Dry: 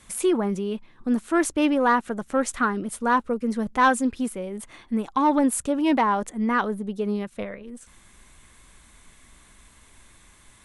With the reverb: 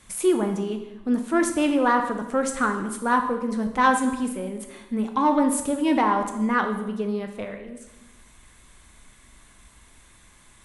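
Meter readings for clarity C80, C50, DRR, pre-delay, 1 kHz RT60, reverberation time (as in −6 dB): 10.0 dB, 8.0 dB, 5.0 dB, 11 ms, 0.95 s, 1.0 s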